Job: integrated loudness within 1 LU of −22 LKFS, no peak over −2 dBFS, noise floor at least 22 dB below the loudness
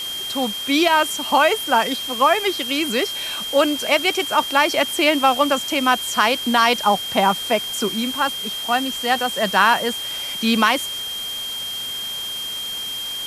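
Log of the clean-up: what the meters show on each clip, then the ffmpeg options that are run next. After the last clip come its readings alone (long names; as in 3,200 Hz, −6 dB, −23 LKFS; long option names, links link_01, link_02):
interfering tone 3,200 Hz; level of the tone −26 dBFS; background noise floor −28 dBFS; target noise floor −41 dBFS; integrated loudness −19.0 LKFS; sample peak −2.5 dBFS; target loudness −22.0 LKFS
→ -af "bandreject=frequency=3200:width=30"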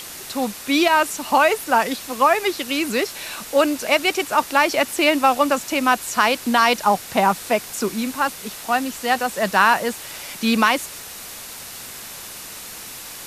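interfering tone none found; background noise floor −36 dBFS; target noise floor −42 dBFS
→ -af "afftdn=noise_reduction=6:noise_floor=-36"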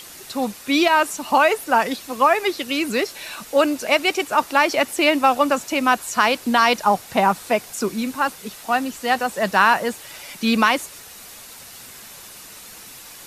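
background noise floor −41 dBFS; target noise floor −42 dBFS
→ -af "afftdn=noise_reduction=6:noise_floor=-41"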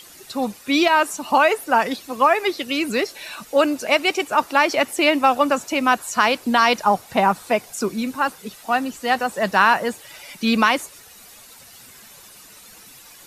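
background noise floor −45 dBFS; integrated loudness −19.5 LKFS; sample peak −3.5 dBFS; target loudness −22.0 LKFS
→ -af "volume=-2.5dB"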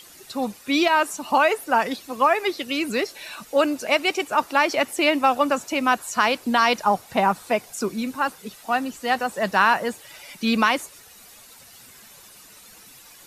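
integrated loudness −22.0 LKFS; sample peak −6.0 dBFS; background noise floor −48 dBFS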